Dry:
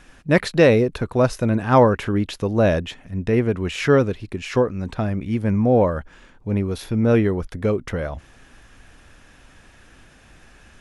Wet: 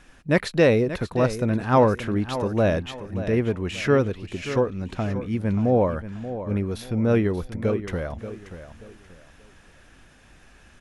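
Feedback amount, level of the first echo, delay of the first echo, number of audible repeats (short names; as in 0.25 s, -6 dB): 30%, -12.0 dB, 0.582 s, 3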